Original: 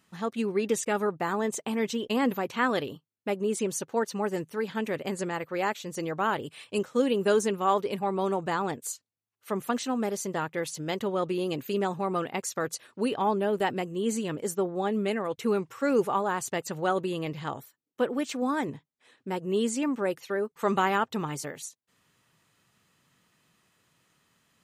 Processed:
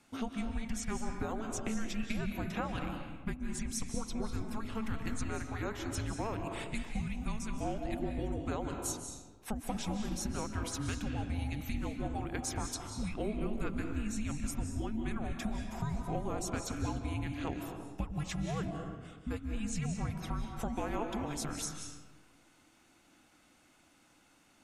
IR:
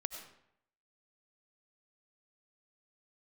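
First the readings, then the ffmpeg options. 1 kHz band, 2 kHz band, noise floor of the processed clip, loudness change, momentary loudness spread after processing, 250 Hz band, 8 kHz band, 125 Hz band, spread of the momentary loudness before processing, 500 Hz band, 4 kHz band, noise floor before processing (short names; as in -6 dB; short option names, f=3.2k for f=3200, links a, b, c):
-12.0 dB, -10.0 dB, -65 dBFS, -8.5 dB, 4 LU, -6.5 dB, -4.5 dB, +1.5 dB, 8 LU, -14.5 dB, -7.0 dB, -81 dBFS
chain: -filter_complex "[0:a]acompressor=threshold=-36dB:ratio=6,afreqshift=-440[a];[1:a]atrim=start_sample=2205,asetrate=22932,aresample=44100[b];[a][b]afir=irnorm=-1:irlink=0"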